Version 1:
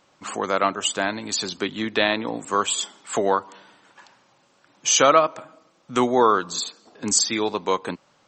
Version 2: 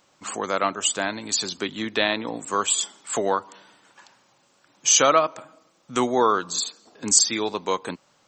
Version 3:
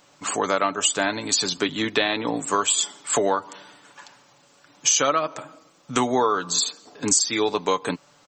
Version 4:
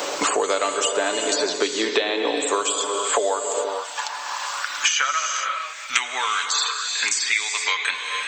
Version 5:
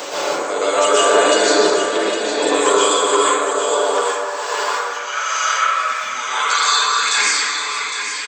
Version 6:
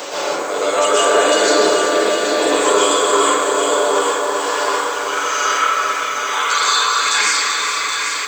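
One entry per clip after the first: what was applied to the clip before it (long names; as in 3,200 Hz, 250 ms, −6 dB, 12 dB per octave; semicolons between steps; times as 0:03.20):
high-shelf EQ 6,700 Hz +10.5 dB; level −2.5 dB
comb filter 6.9 ms, depth 42%; downward compressor 6 to 1, threshold −22 dBFS, peak gain reduction 11 dB; level +5 dB
high-pass filter sweep 430 Hz → 2,100 Hz, 0:02.97–0:05.43; reverb whose tail is shaped and stops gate 490 ms flat, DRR 6 dB; multiband upward and downward compressor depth 100%; level −1.5 dB
volume swells 534 ms; on a send: single-tap delay 809 ms −8.5 dB; on the sum: dense smooth reverb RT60 1.9 s, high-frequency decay 0.35×, pre-delay 110 ms, DRR −9.5 dB; level −1 dB
in parallel at −11 dB: soft clipping −11 dBFS, distortion −15 dB; on the sum: feedback echo at a low word length 387 ms, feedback 80%, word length 6 bits, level −8.5 dB; level −2 dB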